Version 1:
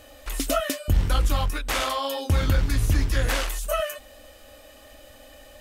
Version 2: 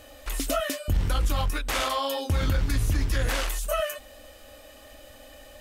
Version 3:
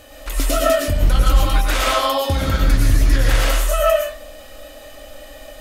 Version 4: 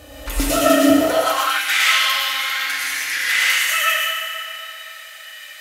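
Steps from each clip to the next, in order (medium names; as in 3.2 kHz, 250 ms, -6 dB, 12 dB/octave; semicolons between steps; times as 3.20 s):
peak limiter -16.5 dBFS, peak gain reduction 4.5 dB
reverberation RT60 0.50 s, pre-delay 74 ms, DRR -2.5 dB; trim +4.5 dB
FDN reverb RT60 3.3 s, high-frequency decay 0.6×, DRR -2 dB; high-pass sweep 63 Hz -> 2 kHz, 0.39–1.64 s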